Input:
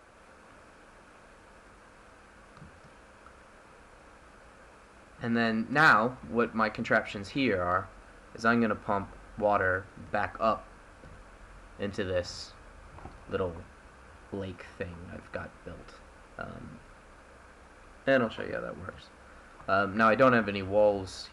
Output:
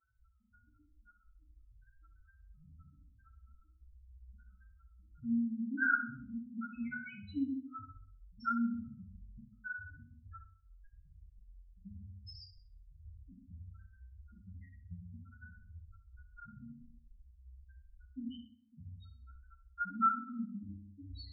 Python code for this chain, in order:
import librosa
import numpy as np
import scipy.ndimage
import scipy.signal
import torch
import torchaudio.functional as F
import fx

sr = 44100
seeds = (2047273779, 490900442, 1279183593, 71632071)

p1 = fx.level_steps(x, sr, step_db=11)
p2 = fx.spec_topn(p1, sr, count=1)
p3 = fx.brickwall_bandstop(p2, sr, low_hz=310.0, high_hz=1300.0)
p4 = p3 + fx.echo_feedback(p3, sr, ms=64, feedback_pct=35, wet_db=-11.0, dry=0)
p5 = fx.room_shoebox(p4, sr, seeds[0], volume_m3=49.0, walls='mixed', distance_m=0.58)
y = p5 * 10.0 ** (3.5 / 20.0)